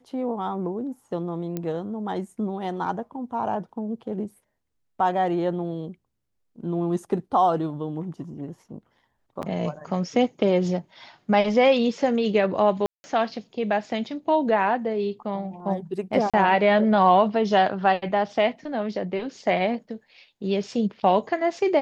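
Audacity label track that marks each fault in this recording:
1.570000	1.570000	click −16 dBFS
9.420000	9.430000	drop-out 9.1 ms
12.860000	13.040000	drop-out 180 ms
16.300000	16.340000	drop-out 36 ms

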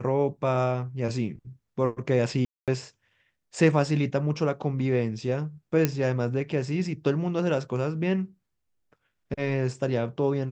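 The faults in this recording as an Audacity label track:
2.450000	2.680000	drop-out 227 ms
5.850000	5.850000	click −8 dBFS

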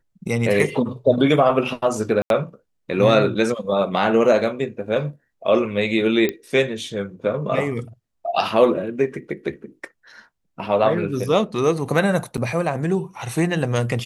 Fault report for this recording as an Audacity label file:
2.220000	2.300000	drop-out 82 ms
6.290000	6.290000	click −10 dBFS
12.370000	12.380000	drop-out 8.2 ms

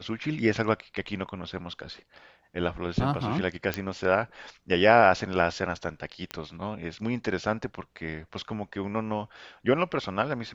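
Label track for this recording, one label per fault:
3.740000	3.740000	click −12 dBFS
6.310000	6.310000	click −17 dBFS

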